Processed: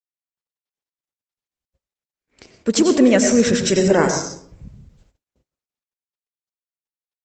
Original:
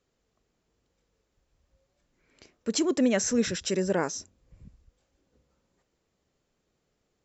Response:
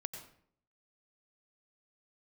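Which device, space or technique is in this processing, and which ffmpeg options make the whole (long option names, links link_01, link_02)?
speakerphone in a meeting room: -filter_complex "[1:a]atrim=start_sample=2205[link_01];[0:a][link_01]afir=irnorm=-1:irlink=0,dynaudnorm=framelen=140:gausssize=3:maxgain=11dB,agate=range=-42dB:threshold=-55dB:ratio=16:detection=peak,volume=2.5dB" -ar 48000 -c:a libopus -b:a 16k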